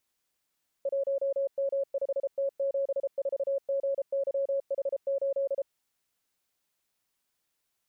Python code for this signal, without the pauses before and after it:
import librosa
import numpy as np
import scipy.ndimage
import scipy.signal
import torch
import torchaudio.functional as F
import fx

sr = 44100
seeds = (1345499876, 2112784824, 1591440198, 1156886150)

y = fx.morse(sr, text='1M5T74GYH8', wpm=33, hz=551.0, level_db=-25.5)